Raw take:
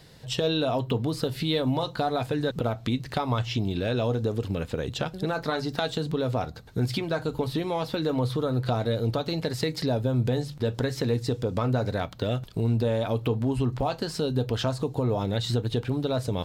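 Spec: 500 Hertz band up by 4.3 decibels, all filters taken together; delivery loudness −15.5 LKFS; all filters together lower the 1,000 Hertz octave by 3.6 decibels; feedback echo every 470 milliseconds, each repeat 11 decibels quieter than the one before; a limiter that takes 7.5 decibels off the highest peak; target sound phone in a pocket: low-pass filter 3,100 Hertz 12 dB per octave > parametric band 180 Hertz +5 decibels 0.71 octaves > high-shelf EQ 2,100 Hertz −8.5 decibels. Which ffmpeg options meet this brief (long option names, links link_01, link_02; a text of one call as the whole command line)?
ffmpeg -i in.wav -af "equalizer=frequency=500:width_type=o:gain=7,equalizer=frequency=1000:width_type=o:gain=-8,alimiter=limit=-19dB:level=0:latency=1,lowpass=3100,equalizer=frequency=180:width_type=o:width=0.71:gain=5,highshelf=frequency=2100:gain=-8.5,aecho=1:1:470|940|1410:0.282|0.0789|0.0221,volume=12dB" out.wav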